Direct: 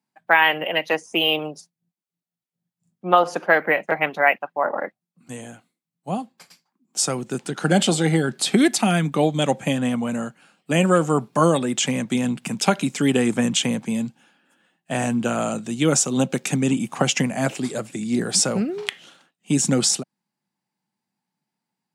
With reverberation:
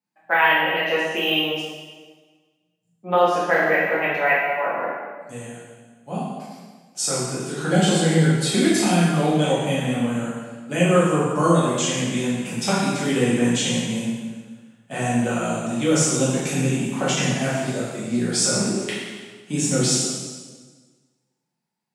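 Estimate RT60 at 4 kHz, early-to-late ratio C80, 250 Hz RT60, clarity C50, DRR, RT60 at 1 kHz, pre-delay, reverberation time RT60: 1.3 s, 1.5 dB, 1.6 s, -1.0 dB, -9.5 dB, 1.4 s, 4 ms, 1.4 s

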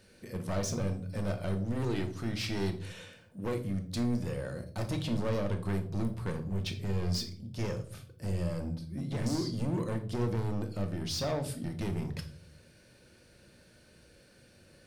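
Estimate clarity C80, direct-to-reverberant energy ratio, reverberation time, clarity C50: 16.5 dB, 5.5 dB, 0.45 s, 11.5 dB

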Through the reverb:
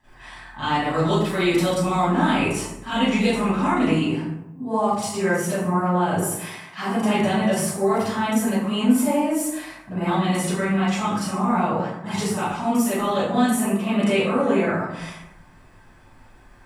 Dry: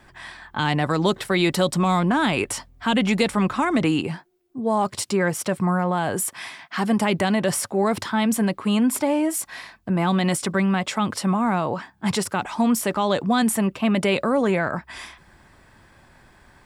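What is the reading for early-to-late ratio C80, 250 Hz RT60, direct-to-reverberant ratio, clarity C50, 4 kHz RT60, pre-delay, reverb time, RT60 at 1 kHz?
2.0 dB, 1.0 s, -14.0 dB, -4.5 dB, 0.45 s, 33 ms, 0.90 s, 0.85 s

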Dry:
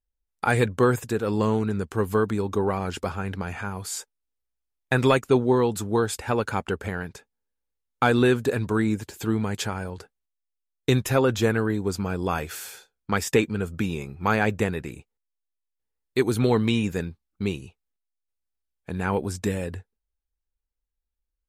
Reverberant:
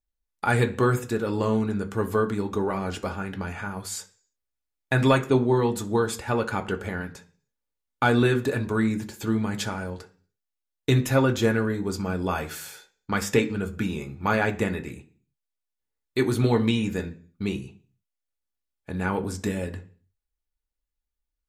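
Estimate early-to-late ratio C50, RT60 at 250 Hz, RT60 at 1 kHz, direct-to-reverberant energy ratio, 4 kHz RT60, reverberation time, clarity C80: 15.5 dB, 0.50 s, 0.40 s, 4.0 dB, 0.50 s, 0.40 s, 20.0 dB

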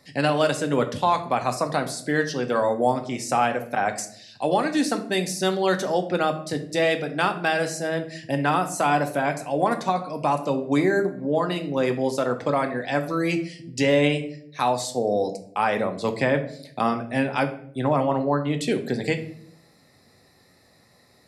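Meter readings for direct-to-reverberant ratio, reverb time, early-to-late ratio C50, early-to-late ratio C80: 5.5 dB, 0.65 s, 11.5 dB, 16.0 dB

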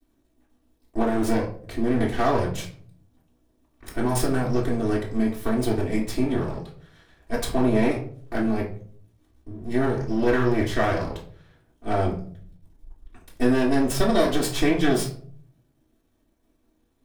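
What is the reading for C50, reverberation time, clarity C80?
8.5 dB, not exponential, 13.5 dB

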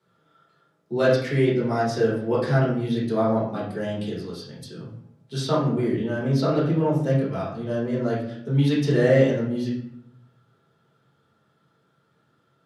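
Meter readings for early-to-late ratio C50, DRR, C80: 3.0 dB, -7.5 dB, 7.5 dB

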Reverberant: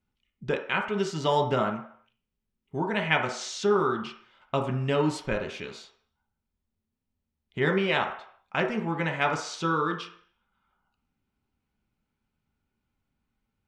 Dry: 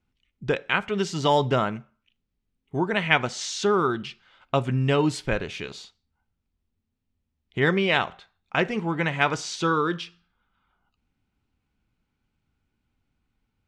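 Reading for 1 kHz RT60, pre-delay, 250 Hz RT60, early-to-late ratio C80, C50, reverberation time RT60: 0.65 s, 3 ms, 0.45 s, 12.0 dB, 7.5 dB, 0.60 s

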